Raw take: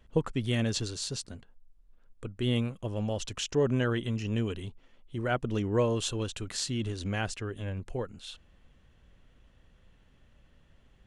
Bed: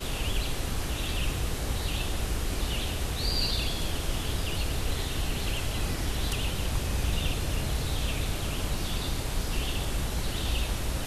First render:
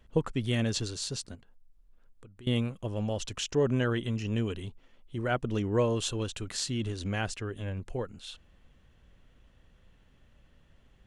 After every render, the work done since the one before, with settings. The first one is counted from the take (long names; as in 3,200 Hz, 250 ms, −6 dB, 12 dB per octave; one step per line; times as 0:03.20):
0:01.35–0:02.47: downward compressor 3 to 1, threshold −52 dBFS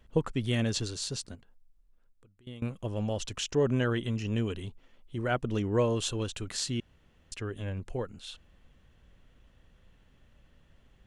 0:01.29–0:02.62: fade out, to −20.5 dB
0:06.80–0:07.32: fill with room tone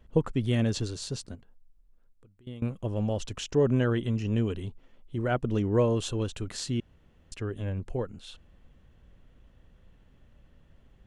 tilt shelving filter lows +3.5 dB, about 1,100 Hz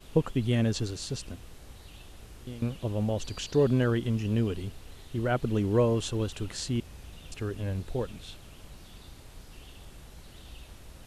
mix in bed −18.5 dB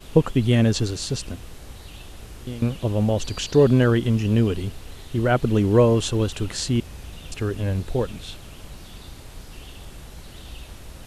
level +8 dB